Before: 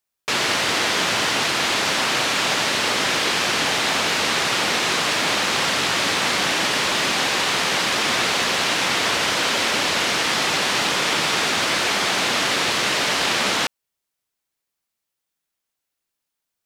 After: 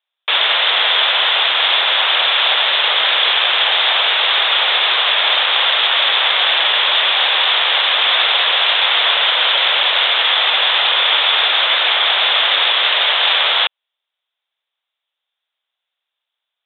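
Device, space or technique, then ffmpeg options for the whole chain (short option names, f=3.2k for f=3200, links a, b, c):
musical greeting card: -af "aresample=8000,aresample=44100,highpass=f=560:w=0.5412,highpass=f=560:w=1.3066,equalizer=f=3.5k:t=o:w=0.42:g=11.5,volume=4dB"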